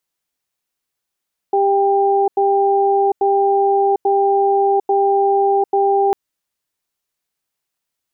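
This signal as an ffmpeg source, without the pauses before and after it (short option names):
-f lavfi -i "aevalsrc='0.188*(sin(2*PI*396*t)+sin(2*PI*793*t))*clip(min(mod(t,0.84),0.75-mod(t,0.84))/0.005,0,1)':d=4.6:s=44100"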